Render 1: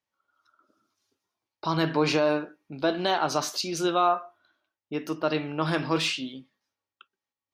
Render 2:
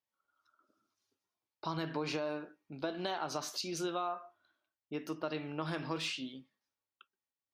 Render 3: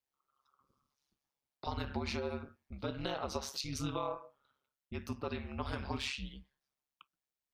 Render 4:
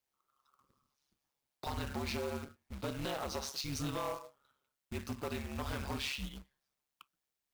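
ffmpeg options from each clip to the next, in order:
ffmpeg -i in.wav -af "acompressor=threshold=-25dB:ratio=6,volume=-7.5dB" out.wav
ffmpeg -i in.wav -af "afreqshift=-140,aeval=exprs='val(0)*sin(2*PI*69*n/s)':channel_layout=same,volume=2dB" out.wav
ffmpeg -i in.wav -af "acrusher=bits=2:mode=log:mix=0:aa=0.000001,volume=33.5dB,asoftclip=hard,volume=-33.5dB,volume=1.5dB" out.wav

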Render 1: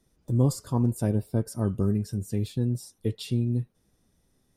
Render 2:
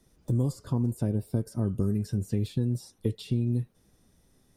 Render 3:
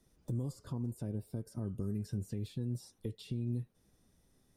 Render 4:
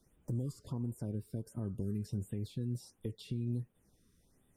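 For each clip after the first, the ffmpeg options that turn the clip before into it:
ffmpeg -i in.wav -filter_complex "[0:a]acrossover=split=510|4500[link_01][link_02][link_03];[link_01]acompressor=threshold=-29dB:ratio=4[link_04];[link_02]acompressor=threshold=-50dB:ratio=4[link_05];[link_03]acompressor=threshold=-57dB:ratio=4[link_06];[link_04][link_05][link_06]amix=inputs=3:normalize=0,volume=4.5dB" out.wav
ffmpeg -i in.wav -af "alimiter=limit=-22dB:level=0:latency=1:release=296,volume=-6dB" out.wav
ffmpeg -i in.wav -af "afftfilt=real='re*(1-between(b*sr/1024,660*pow(5400/660,0.5+0.5*sin(2*PI*1.4*pts/sr))/1.41,660*pow(5400/660,0.5+0.5*sin(2*PI*1.4*pts/sr))*1.41))':imag='im*(1-between(b*sr/1024,660*pow(5400/660,0.5+0.5*sin(2*PI*1.4*pts/sr))/1.41,660*pow(5400/660,0.5+0.5*sin(2*PI*1.4*pts/sr))*1.41))':win_size=1024:overlap=0.75" out.wav

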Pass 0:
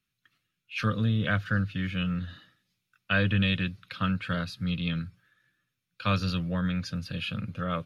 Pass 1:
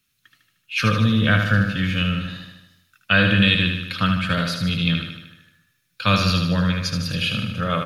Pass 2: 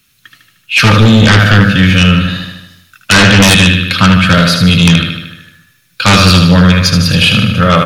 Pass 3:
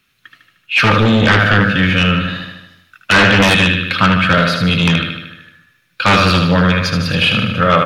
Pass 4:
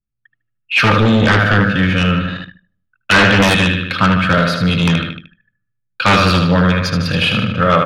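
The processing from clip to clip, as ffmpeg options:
ffmpeg -i in.wav -filter_complex "[0:a]highshelf=frequency=3500:gain=9,asplit=2[link_01][link_02];[link_02]aecho=0:1:76|152|228|304|380|456|532|608:0.531|0.308|0.179|0.104|0.0601|0.0348|0.0202|0.0117[link_03];[link_01][link_03]amix=inputs=2:normalize=0,volume=7dB" out.wav
ffmpeg -i in.wav -af "aeval=exprs='0.708*sin(PI/2*3.55*val(0)/0.708)':channel_layout=same,volume=1.5dB" out.wav
ffmpeg -i in.wav -af "bass=frequency=250:gain=-7,treble=frequency=4000:gain=-13,volume=-1.5dB" out.wav
ffmpeg -i in.wav -af "adynamicequalizer=threshold=0.0501:dfrequency=2700:dqfactor=0.99:tfrequency=2700:tqfactor=0.99:attack=5:release=100:ratio=0.375:range=2.5:mode=cutabove:tftype=bell,anlmdn=251" out.wav

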